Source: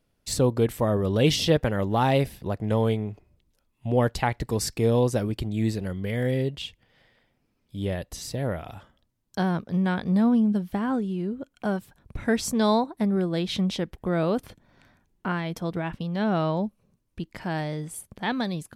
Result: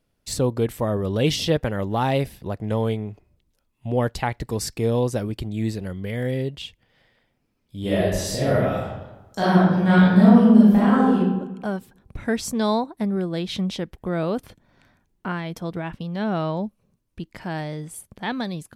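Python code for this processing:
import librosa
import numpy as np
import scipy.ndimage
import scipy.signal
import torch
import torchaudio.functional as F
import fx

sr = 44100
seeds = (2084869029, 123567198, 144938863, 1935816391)

y = fx.reverb_throw(x, sr, start_s=7.8, length_s=3.37, rt60_s=1.1, drr_db=-9.5)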